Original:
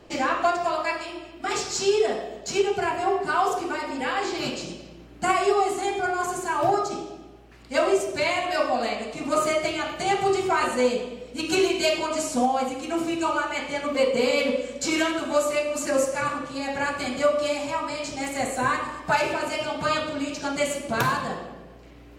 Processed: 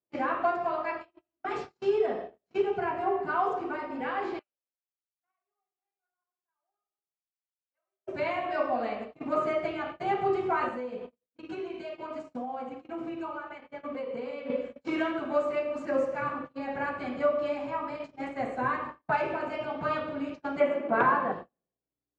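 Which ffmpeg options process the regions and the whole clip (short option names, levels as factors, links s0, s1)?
-filter_complex "[0:a]asettb=1/sr,asplit=3[s0][s1][s2];[s0]atrim=end=4.394[s3];[s1]atrim=start=4.39:end=8.07,asetpts=PTS-STARTPTS,afade=t=in:d=0.004:c=qsin,afade=t=out:st=3.676:d=0.004:c=qsin,highpass=370,lowpass=2600,aderivative,adynamicsmooth=sensitivity=8:basefreq=1900[s4];[s2]atrim=start=8.066[s5];[s3][s4]acrossfade=d=0.004:c1=hsin:c2=qsin[s6];[s6][s5]acrossfade=d=0.004:c1=qsin:c2=hsin,asettb=1/sr,asplit=3[s7][s8][s9];[s7]atrim=end=10.694[s10];[s8]atrim=start=10.69:end=14.5,asetpts=PTS-STARTPTS,afade=t=in:d=0.004:c=qsin,afade=t=out:st=3.806:d=0.004:c=qsin,agate=range=0.0224:threshold=0.0224:ratio=3:release=100:detection=peak,acompressor=threshold=0.0447:ratio=8:attack=3.2:release=140:knee=1:detection=peak[s11];[s9]atrim=start=14.496[s12];[s10][s11]acrossfade=d=0.004:c1=hsin:c2=qsin[s13];[s13][s12]acrossfade=d=0.004:c1=qsin:c2=hsin,asettb=1/sr,asplit=3[s14][s15][s16];[s14]atrim=end=20.604[s17];[s15]atrim=start=20.6:end=21.32,asetpts=PTS-STARTPTS,afade=t=in:d=0.004:c=qsin,afade=t=out:st=0.716:d=0.004:c=qsin,acrossover=split=210 2600:gain=0.0708 1 0.126[s18][s19][s20];[s18][s19][s20]amix=inputs=3:normalize=0,acontrast=66[s21];[s16]atrim=start=21.316[s22];[s17][s21]acrossfade=d=0.004:c1=hsin:c2=qsin[s23];[s23][s22]acrossfade=d=0.004:c1=qsin:c2=hsin,lowpass=1800,agate=range=0.00891:threshold=0.0251:ratio=16:detection=peak,highpass=84,volume=0.596"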